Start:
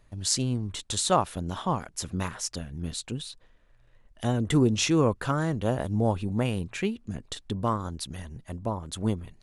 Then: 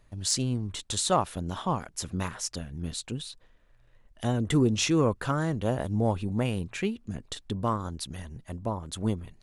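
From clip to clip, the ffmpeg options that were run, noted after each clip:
ffmpeg -i in.wav -af "acontrast=73,volume=-7.5dB" out.wav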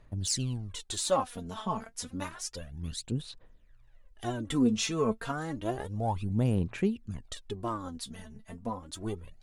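ffmpeg -i in.wav -af "aphaser=in_gain=1:out_gain=1:delay=4.6:decay=0.69:speed=0.3:type=sinusoidal,volume=-6.5dB" out.wav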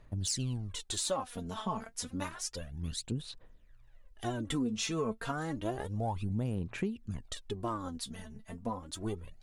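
ffmpeg -i in.wav -af "acompressor=threshold=-30dB:ratio=5" out.wav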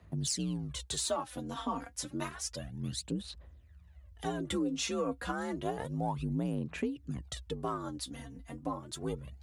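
ffmpeg -i in.wav -af "afreqshift=50" out.wav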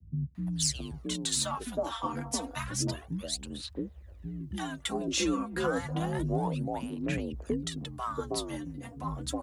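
ffmpeg -i in.wav -filter_complex "[0:a]acrossover=split=220|780[link_01][link_02][link_03];[link_03]adelay=350[link_04];[link_02]adelay=670[link_05];[link_01][link_05][link_04]amix=inputs=3:normalize=0,volume=5dB" out.wav

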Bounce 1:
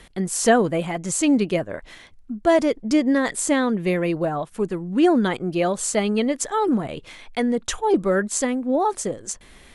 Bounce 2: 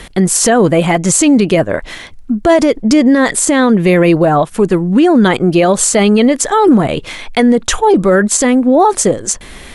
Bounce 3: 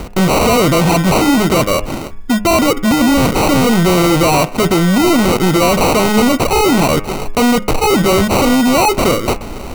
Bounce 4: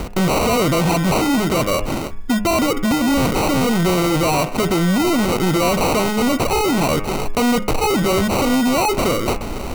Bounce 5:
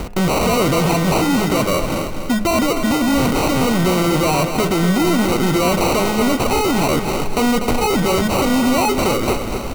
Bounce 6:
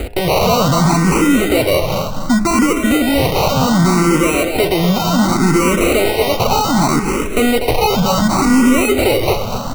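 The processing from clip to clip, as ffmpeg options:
ffmpeg -i in.wav -af "alimiter=level_in=16.5dB:limit=-1dB:release=50:level=0:latency=1,volume=-1dB" out.wav
ffmpeg -i in.wav -af "acrusher=samples=26:mix=1:aa=0.000001,volume=16.5dB,asoftclip=hard,volume=-16.5dB,bandreject=frequency=102.8:width_type=h:width=4,bandreject=frequency=205.6:width_type=h:width=4,bandreject=frequency=308.4:width_type=h:width=4,bandreject=frequency=411.2:width_type=h:width=4,bandreject=frequency=514:width_type=h:width=4,bandreject=frequency=616.8:width_type=h:width=4,bandreject=frequency=719.6:width_type=h:width=4,bandreject=frequency=822.4:width_type=h:width=4,bandreject=frequency=925.2:width_type=h:width=4,bandreject=frequency=1028:width_type=h:width=4,bandreject=frequency=1130.8:width_type=h:width=4,bandreject=frequency=1233.6:width_type=h:width=4,bandreject=frequency=1336.4:width_type=h:width=4,bandreject=frequency=1439.2:width_type=h:width=4,bandreject=frequency=1542:width_type=h:width=4,bandreject=frequency=1644.8:width_type=h:width=4,bandreject=frequency=1747.6:width_type=h:width=4,bandreject=frequency=1850.4:width_type=h:width=4,bandreject=frequency=1953.2:width_type=h:width=4,bandreject=frequency=2056:width_type=h:width=4,bandreject=frequency=2158.8:width_type=h:width=4,bandreject=frequency=2261.6:width_type=h:width=4,bandreject=frequency=2364.4:width_type=h:width=4,bandreject=frequency=2467.2:width_type=h:width=4,bandreject=frequency=2570:width_type=h:width=4,bandreject=frequency=2672.8:width_type=h:width=4,bandreject=frequency=2775.6:width_type=h:width=4,bandreject=frequency=2878.4:width_type=h:width=4,volume=7dB" out.wav
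ffmpeg -i in.wav -af "alimiter=limit=-13dB:level=0:latency=1:release=16" out.wav
ffmpeg -i in.wav -af "aecho=1:1:244|488|732|976|1220:0.398|0.167|0.0702|0.0295|0.0124" out.wav
ffmpeg -i in.wav -filter_complex "[0:a]asplit=2[link_01][link_02];[link_02]afreqshift=0.67[link_03];[link_01][link_03]amix=inputs=2:normalize=1,volume=6dB" out.wav

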